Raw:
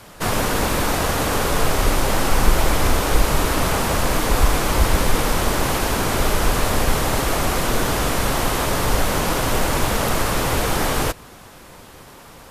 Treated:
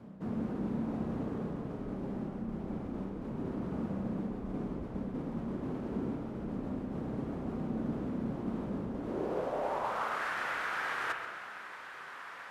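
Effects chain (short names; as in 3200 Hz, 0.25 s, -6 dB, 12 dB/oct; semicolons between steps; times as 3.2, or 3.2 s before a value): reverse; compressor 6:1, threshold -28 dBFS, peak gain reduction 19.5 dB; reverse; band-pass sweep 220 Hz -> 1600 Hz, 8.87–10.22; split-band echo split 830 Hz, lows 0.191 s, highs 0.132 s, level -14 dB; spring tank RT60 1.3 s, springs 31/57 ms, chirp 45 ms, DRR 4 dB; gain +4 dB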